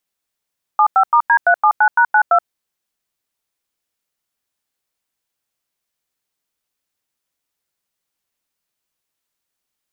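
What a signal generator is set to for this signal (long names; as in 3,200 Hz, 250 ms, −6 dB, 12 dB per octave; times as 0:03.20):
touch tones "75*D379#92", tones 76 ms, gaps 93 ms, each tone −11 dBFS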